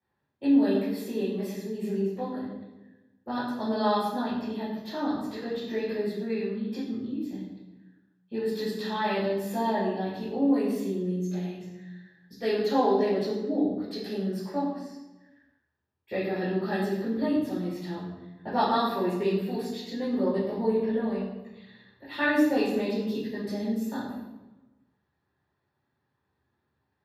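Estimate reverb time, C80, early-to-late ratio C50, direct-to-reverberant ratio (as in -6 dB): 1.1 s, 4.0 dB, 1.5 dB, -12.5 dB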